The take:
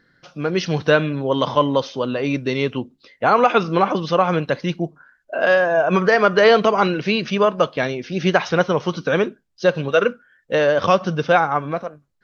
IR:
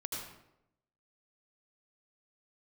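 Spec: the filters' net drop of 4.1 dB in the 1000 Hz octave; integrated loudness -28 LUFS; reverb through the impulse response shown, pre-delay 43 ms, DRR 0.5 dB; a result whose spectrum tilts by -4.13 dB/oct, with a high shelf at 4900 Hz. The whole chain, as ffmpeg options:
-filter_complex "[0:a]equalizer=f=1k:t=o:g=-6,highshelf=f=4.9k:g=5,asplit=2[a][b];[1:a]atrim=start_sample=2205,adelay=43[c];[b][c]afir=irnorm=-1:irlink=0,volume=-1.5dB[d];[a][d]amix=inputs=2:normalize=0,volume=-11dB"

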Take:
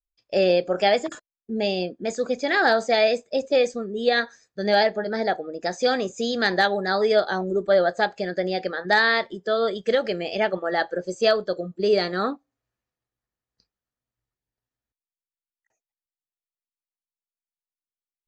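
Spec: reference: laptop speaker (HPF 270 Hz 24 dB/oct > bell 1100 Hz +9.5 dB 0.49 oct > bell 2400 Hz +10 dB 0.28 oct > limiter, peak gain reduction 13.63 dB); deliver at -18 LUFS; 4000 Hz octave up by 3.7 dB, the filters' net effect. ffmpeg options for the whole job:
-af "highpass=f=270:w=0.5412,highpass=f=270:w=1.3066,equalizer=f=1.1k:t=o:w=0.49:g=9.5,equalizer=f=2.4k:t=o:w=0.28:g=10,equalizer=f=4k:t=o:g=3.5,volume=9.5dB,alimiter=limit=-8dB:level=0:latency=1"

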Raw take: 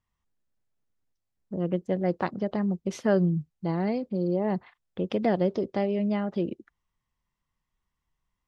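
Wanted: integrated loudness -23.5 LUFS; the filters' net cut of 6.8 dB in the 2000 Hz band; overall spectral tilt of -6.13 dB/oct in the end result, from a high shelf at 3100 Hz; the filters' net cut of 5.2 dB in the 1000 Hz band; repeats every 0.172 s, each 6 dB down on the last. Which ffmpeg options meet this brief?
-af "equalizer=f=1k:t=o:g=-6.5,equalizer=f=2k:t=o:g=-4.5,highshelf=f=3.1k:g=-5,aecho=1:1:172|344|516|688|860|1032:0.501|0.251|0.125|0.0626|0.0313|0.0157,volume=4.5dB"

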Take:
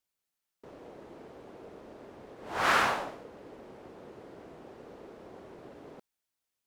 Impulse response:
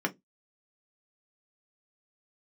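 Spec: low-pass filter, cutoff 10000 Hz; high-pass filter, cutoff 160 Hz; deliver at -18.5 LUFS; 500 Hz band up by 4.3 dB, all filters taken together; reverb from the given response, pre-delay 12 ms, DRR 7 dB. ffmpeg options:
-filter_complex "[0:a]highpass=160,lowpass=10k,equalizer=f=500:t=o:g=5.5,asplit=2[a][b];[1:a]atrim=start_sample=2205,adelay=12[c];[b][c]afir=irnorm=-1:irlink=0,volume=-14.5dB[d];[a][d]amix=inputs=2:normalize=0,volume=9dB"

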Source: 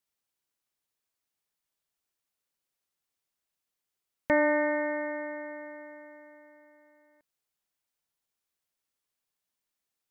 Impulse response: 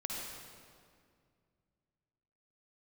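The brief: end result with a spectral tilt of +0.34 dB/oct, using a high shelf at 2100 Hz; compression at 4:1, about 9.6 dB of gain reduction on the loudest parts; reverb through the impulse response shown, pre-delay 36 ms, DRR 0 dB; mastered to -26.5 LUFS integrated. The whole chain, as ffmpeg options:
-filter_complex "[0:a]highshelf=f=2.1k:g=-3,acompressor=threshold=-32dB:ratio=4,asplit=2[a][b];[1:a]atrim=start_sample=2205,adelay=36[c];[b][c]afir=irnorm=-1:irlink=0,volume=-2dB[d];[a][d]amix=inputs=2:normalize=0,volume=11dB"

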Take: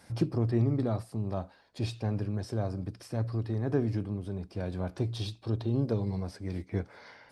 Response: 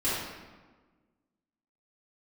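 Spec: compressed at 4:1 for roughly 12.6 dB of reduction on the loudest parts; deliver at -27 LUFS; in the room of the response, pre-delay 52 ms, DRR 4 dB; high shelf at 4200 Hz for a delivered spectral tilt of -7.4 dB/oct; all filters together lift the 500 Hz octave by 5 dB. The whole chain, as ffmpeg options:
-filter_complex "[0:a]equalizer=f=500:t=o:g=6.5,highshelf=f=4.2k:g=4,acompressor=threshold=-35dB:ratio=4,asplit=2[a][b];[1:a]atrim=start_sample=2205,adelay=52[c];[b][c]afir=irnorm=-1:irlink=0,volume=-14.5dB[d];[a][d]amix=inputs=2:normalize=0,volume=10.5dB"

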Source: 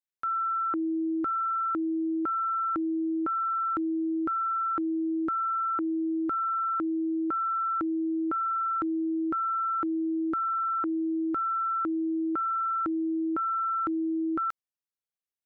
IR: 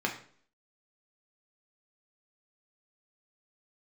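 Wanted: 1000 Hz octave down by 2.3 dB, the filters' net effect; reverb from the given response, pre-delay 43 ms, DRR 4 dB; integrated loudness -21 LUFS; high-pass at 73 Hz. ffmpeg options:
-filter_complex "[0:a]highpass=73,equalizer=f=1k:t=o:g=-4,asplit=2[a][b];[1:a]atrim=start_sample=2205,adelay=43[c];[b][c]afir=irnorm=-1:irlink=0,volume=-11.5dB[d];[a][d]amix=inputs=2:normalize=0,volume=8.5dB"

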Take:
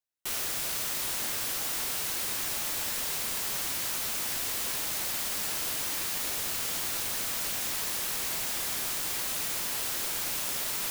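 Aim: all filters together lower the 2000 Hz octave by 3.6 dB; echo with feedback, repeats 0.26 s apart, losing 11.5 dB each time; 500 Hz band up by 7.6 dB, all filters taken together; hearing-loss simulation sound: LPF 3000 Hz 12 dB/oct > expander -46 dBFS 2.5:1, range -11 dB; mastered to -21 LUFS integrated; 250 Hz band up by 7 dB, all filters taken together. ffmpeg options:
-af "lowpass=3k,equalizer=f=250:t=o:g=6.5,equalizer=f=500:t=o:g=8,equalizer=f=2k:t=o:g=-4,aecho=1:1:260|520|780:0.266|0.0718|0.0194,agate=range=-11dB:threshold=-46dB:ratio=2.5,volume=16.5dB"

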